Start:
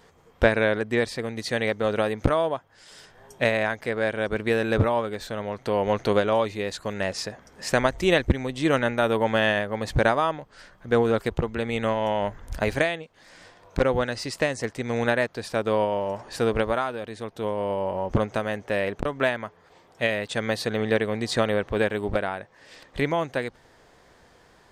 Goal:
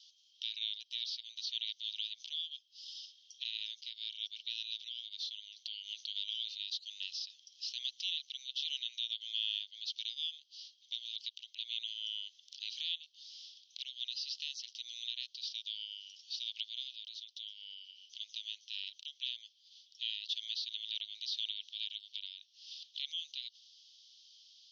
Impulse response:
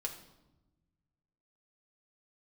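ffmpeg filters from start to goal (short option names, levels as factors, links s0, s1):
-filter_complex "[0:a]asuperpass=centerf=4300:order=12:qfactor=1.4,alimiter=level_in=1.68:limit=0.0631:level=0:latency=1:release=78,volume=0.596,acrossover=split=3900[s0][s1];[s1]acompressor=threshold=0.00126:ratio=4:attack=1:release=60[s2];[s0][s2]amix=inputs=2:normalize=0,volume=2.24"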